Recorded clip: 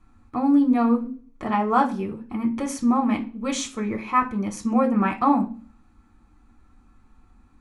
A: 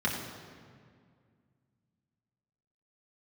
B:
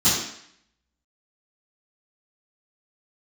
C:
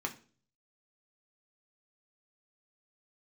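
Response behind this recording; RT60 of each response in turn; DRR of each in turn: C; 2.1 s, 0.65 s, 0.40 s; -4.0 dB, -17.0 dB, 2.0 dB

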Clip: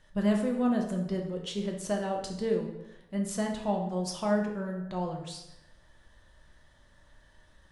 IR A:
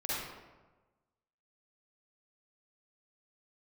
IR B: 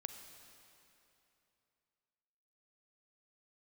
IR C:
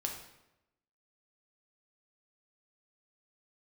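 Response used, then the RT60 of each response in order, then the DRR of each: C; 1.2 s, 3.0 s, 0.90 s; -9.0 dB, 6.5 dB, 1.0 dB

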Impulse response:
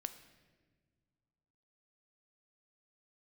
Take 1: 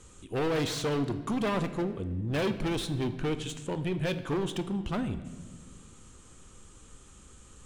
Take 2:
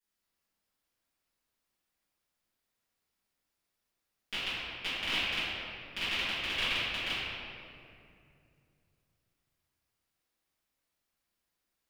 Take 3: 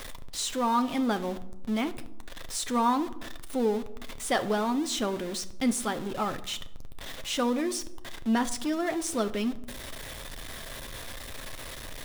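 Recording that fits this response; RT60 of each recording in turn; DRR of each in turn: 1; no single decay rate, 2.5 s, 0.95 s; 9.5 dB, -17.0 dB, 9.0 dB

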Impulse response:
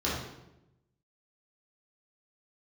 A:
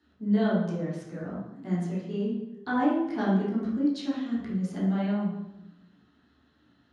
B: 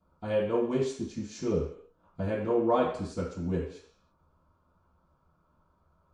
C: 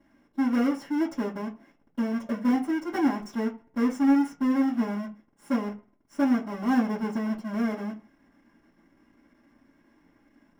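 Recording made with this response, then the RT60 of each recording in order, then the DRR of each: A; 0.90 s, no single decay rate, no single decay rate; -8.5 dB, -11.0 dB, -9.0 dB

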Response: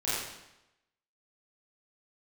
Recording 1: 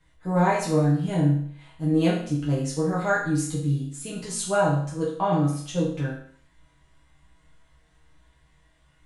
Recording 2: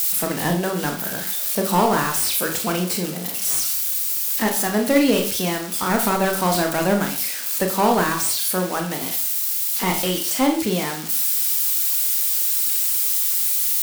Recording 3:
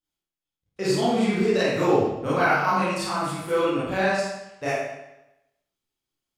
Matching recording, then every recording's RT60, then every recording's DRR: 3; 0.55 s, 0.40 s, 0.90 s; -7.0 dB, 3.0 dB, -11.5 dB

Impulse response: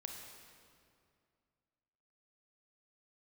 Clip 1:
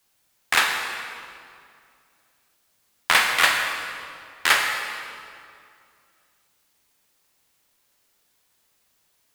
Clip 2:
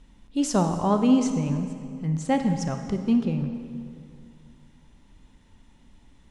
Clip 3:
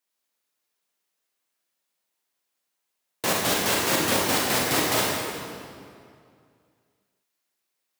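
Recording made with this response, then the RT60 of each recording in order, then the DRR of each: 1; 2.3 s, 2.3 s, 2.3 s; 2.0 dB, 6.5 dB, -3.0 dB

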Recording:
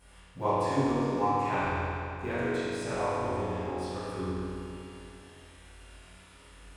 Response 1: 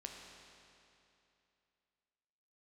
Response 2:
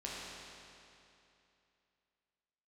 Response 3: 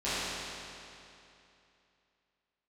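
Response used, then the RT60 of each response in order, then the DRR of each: 3; 2.8 s, 2.8 s, 2.8 s; 0.5 dB, -6.5 dB, -15.0 dB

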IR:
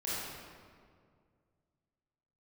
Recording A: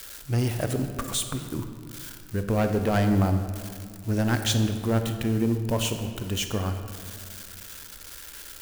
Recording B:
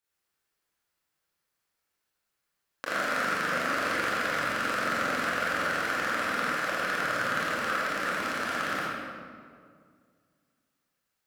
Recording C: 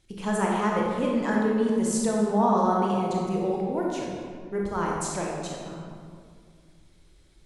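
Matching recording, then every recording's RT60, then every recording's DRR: B; 2.2 s, 2.1 s, 2.1 s; 7.0 dB, -9.5 dB, -3.0 dB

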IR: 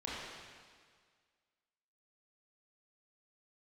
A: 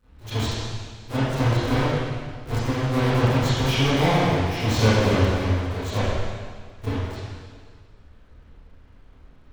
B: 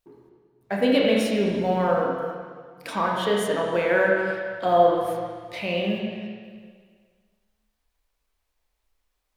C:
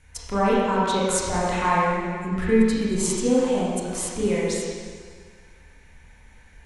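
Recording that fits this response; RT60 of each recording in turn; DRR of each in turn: C; 1.8 s, 1.8 s, 1.8 s; -15.5 dB, -2.5 dB, -7.0 dB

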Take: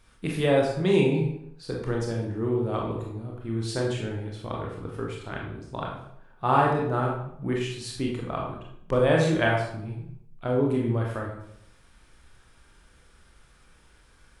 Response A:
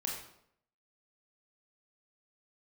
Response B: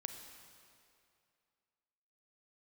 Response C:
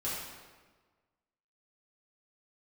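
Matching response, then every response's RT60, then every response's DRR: A; 0.70 s, 2.5 s, 1.4 s; -2.0 dB, 6.0 dB, -9.5 dB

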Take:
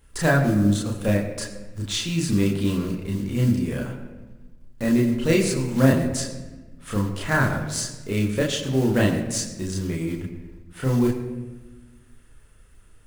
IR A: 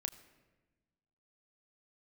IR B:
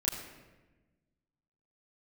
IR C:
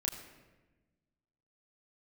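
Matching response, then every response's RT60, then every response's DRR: C; 1.2 s, 1.2 s, 1.2 s; 7.0 dB, -6.5 dB, -1.5 dB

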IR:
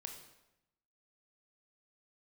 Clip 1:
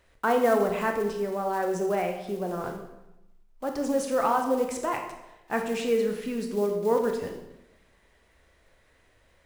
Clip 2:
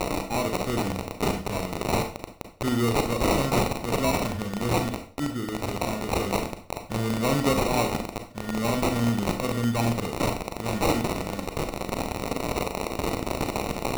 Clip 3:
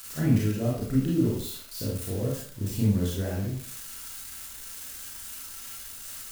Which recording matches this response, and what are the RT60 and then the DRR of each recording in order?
1; 0.90 s, 0.40 s, 0.55 s; 3.5 dB, 5.0 dB, -5.5 dB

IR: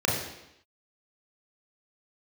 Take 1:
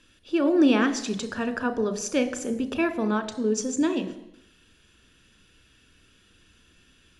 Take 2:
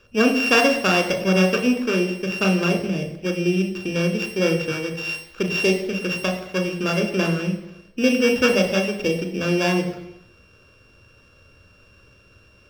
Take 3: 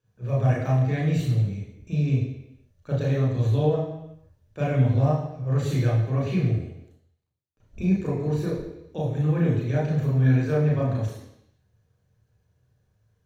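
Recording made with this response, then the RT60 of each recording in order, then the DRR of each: 3; 0.85 s, 0.85 s, 0.85 s; 9.5 dB, 4.5 dB, -4.5 dB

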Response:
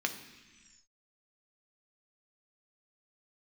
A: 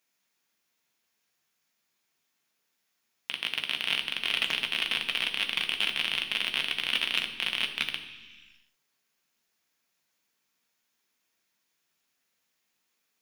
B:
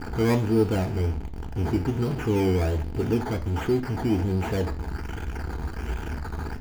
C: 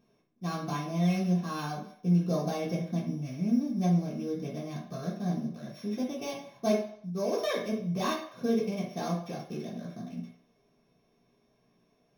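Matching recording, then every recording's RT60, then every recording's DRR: A; 1.3 s, 0.45 s, 0.65 s; 4.5 dB, 6.0 dB, -8.5 dB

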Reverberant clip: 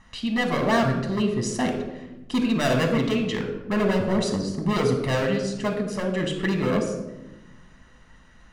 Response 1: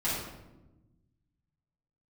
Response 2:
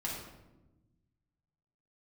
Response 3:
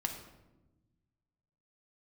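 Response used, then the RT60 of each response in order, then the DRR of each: 3; 1.0 s, 1.0 s, 1.1 s; -12.0 dB, -5.0 dB, 3.5 dB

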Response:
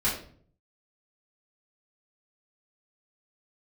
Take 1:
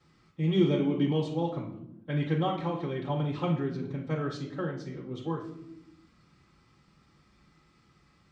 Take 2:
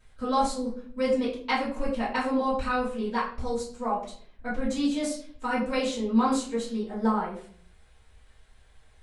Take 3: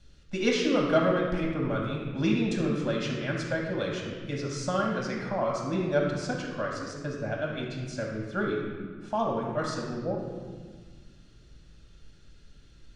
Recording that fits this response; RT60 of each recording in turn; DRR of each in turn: 2; no single decay rate, 0.50 s, 1.6 s; -9.5 dB, -9.5 dB, -2.0 dB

